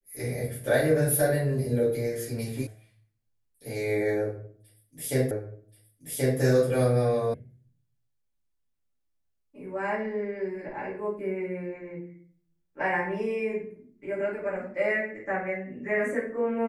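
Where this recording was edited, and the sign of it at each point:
0:02.67: cut off before it has died away
0:05.31: the same again, the last 1.08 s
0:07.34: cut off before it has died away

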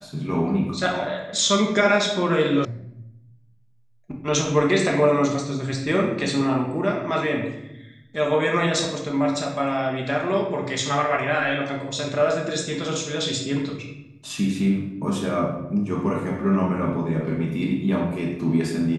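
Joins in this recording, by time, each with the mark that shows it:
0:02.65: cut off before it has died away

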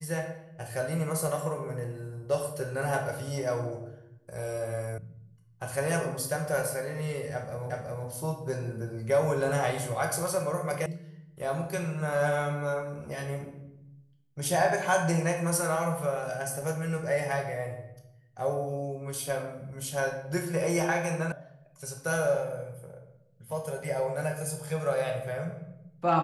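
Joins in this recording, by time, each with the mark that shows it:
0:04.98: cut off before it has died away
0:07.70: the same again, the last 0.37 s
0:10.86: cut off before it has died away
0:21.32: cut off before it has died away

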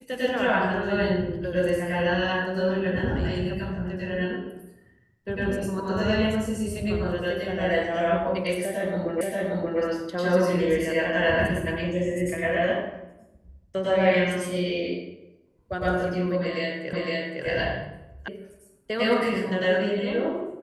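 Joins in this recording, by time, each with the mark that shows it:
0:09.21: the same again, the last 0.58 s
0:16.93: the same again, the last 0.51 s
0:18.28: cut off before it has died away

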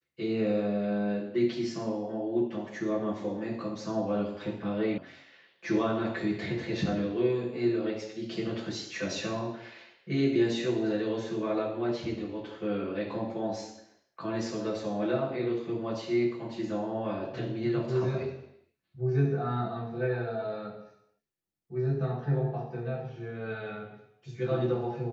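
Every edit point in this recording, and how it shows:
0:04.98: cut off before it has died away

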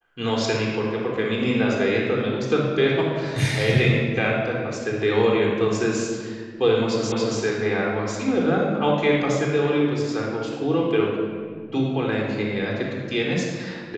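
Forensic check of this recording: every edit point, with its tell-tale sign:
0:07.12: the same again, the last 0.28 s

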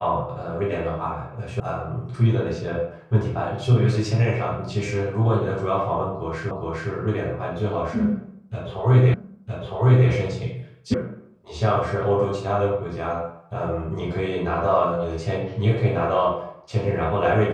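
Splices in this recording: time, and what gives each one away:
0:01.60: cut off before it has died away
0:06.51: the same again, the last 0.41 s
0:09.14: the same again, the last 0.96 s
0:10.94: cut off before it has died away

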